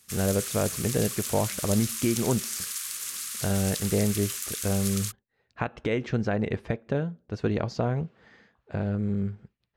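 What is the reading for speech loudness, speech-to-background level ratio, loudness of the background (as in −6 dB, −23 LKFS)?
−29.0 LKFS, 2.5 dB, −31.5 LKFS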